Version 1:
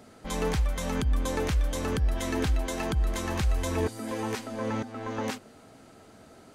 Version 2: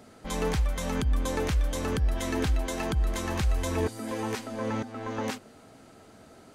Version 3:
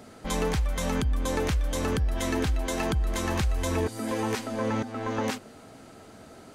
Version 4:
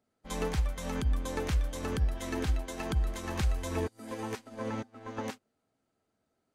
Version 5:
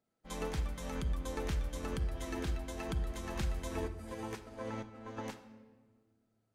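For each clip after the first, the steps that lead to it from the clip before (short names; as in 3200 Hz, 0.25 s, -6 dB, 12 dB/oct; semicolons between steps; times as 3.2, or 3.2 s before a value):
nothing audible
compressor 4:1, threshold -27 dBFS, peak gain reduction 6 dB; gain +4 dB
upward expander 2.5:1, over -43 dBFS
reverb RT60 1.6 s, pre-delay 6 ms, DRR 8 dB; gain -5.5 dB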